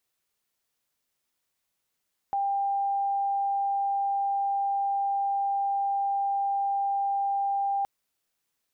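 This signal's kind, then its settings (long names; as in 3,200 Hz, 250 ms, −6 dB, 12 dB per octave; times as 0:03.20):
tone sine 795 Hz −24 dBFS 5.52 s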